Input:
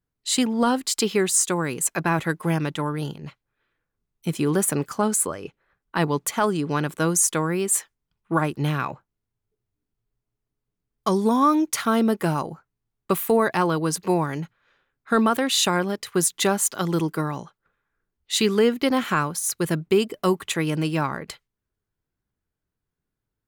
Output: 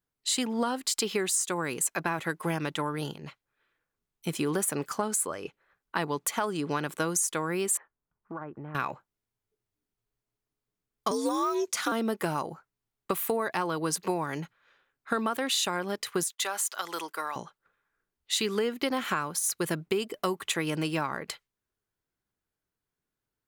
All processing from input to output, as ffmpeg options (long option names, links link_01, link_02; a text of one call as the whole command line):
ffmpeg -i in.wav -filter_complex "[0:a]asettb=1/sr,asplit=3[link_01][link_02][link_03];[link_01]atrim=end=7.774[link_04];[link_02]atrim=start=7.77:end=8.75,asetpts=PTS-STARTPTS,afade=type=in:duration=0.004:curve=qsin,afade=type=out:start_time=0.976:duration=0.004:curve=qsin,lowpass=frequency=1600:width=0.5412,lowpass=frequency=1600:width=1.3066,acompressor=threshold=-33dB:ratio=6:attack=3.2:release=140:knee=1:detection=peak[link_05];[link_03]atrim=start=8.746[link_06];[link_04][link_05]acrossfade=duration=0.004:curve1=hsin:curve2=qsin[link_07];[link_07][link_06]acrossfade=duration=0.004:curve1=qsin:curve2=hsin,asettb=1/sr,asplit=3[link_08][link_09][link_10];[link_08]atrim=end=11.114[link_11];[link_09]atrim=start=11.11:end=11.92,asetpts=PTS-STARTPTS,afade=type=in:duration=0.004:curve=qsin,afade=type=out:start_time=0.806:duration=0.004:curve=qsin,deesser=0.95,equalizer=frequency=6700:width=0.54:gain=12.5,afreqshift=65[link_12];[link_10]atrim=start=11.916[link_13];[link_11][link_12]acrossfade=duration=0.004:curve1=hsin:curve2=qsin[link_14];[link_14][link_13]acrossfade=duration=0.004:curve1=qsin:curve2=hsin,asettb=1/sr,asplit=3[link_15][link_16][link_17];[link_15]atrim=end=16.234[link_18];[link_16]atrim=start=16.23:end=17.36,asetpts=PTS-STARTPTS,afade=type=in:duration=0.004:curve=qsin,afade=type=out:start_time=1.126:duration=0.004:curve=qsin,agate=range=-33dB:threshold=-35dB:ratio=3:release=100:detection=peak,highpass=750,acompressor=threshold=-26dB:ratio=2.5:attack=3.2:release=140:knee=1:detection=peak[link_19];[link_17]atrim=start=17.356[link_20];[link_18][link_19]acrossfade=duration=0.004:curve1=hsin:curve2=qsin[link_21];[link_21][link_20]acrossfade=duration=0.004:curve1=qsin:curve2=hsin,lowshelf=frequency=240:gain=-10,acompressor=threshold=-25dB:ratio=6" out.wav